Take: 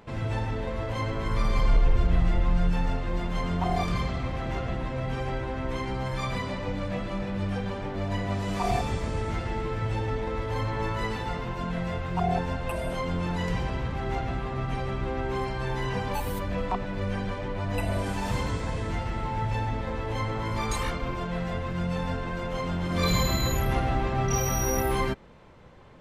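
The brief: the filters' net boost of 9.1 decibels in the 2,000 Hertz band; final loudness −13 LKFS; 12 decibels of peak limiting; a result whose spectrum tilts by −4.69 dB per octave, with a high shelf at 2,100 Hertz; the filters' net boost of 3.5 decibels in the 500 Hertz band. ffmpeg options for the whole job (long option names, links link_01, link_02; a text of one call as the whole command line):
ffmpeg -i in.wav -af "equalizer=frequency=500:width_type=o:gain=3.5,equalizer=frequency=2000:width_type=o:gain=7,highshelf=frequency=2100:gain=6.5,volume=17.5dB,alimiter=limit=-4dB:level=0:latency=1" out.wav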